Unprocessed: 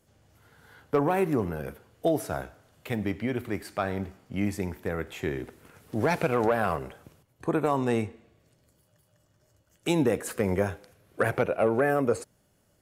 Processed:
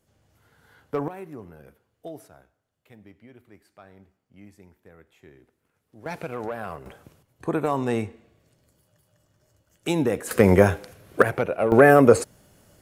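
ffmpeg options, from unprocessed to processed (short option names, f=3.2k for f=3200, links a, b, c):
-af "asetnsamples=n=441:p=0,asendcmd='1.08 volume volume -13.5dB;2.28 volume volume -20dB;6.06 volume volume -7.5dB;6.86 volume volume 1dB;10.31 volume volume 10.5dB;11.22 volume volume 1dB;11.72 volume volume 11dB',volume=-3dB"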